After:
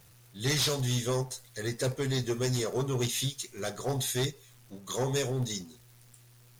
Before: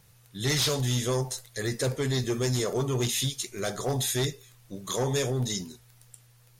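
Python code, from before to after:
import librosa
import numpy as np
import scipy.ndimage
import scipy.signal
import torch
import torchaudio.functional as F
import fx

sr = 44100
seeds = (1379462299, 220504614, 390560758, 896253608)

y = x + 0.5 * 10.0 ** (-43.0 / 20.0) * np.sign(x)
y = fx.upward_expand(y, sr, threshold_db=-41.0, expansion=1.5)
y = y * 10.0 ** (-2.0 / 20.0)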